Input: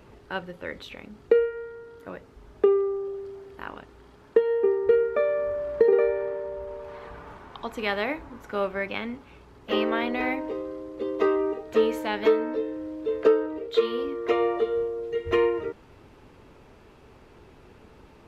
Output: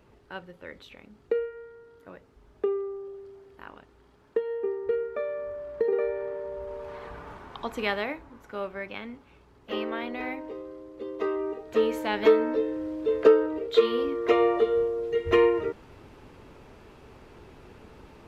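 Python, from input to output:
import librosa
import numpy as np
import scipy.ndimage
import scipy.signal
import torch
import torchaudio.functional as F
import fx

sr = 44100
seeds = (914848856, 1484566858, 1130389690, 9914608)

y = fx.gain(x, sr, db=fx.line((5.74, -7.5), (6.84, 0.5), (7.82, 0.5), (8.24, -6.5), (11.22, -6.5), (12.35, 2.0)))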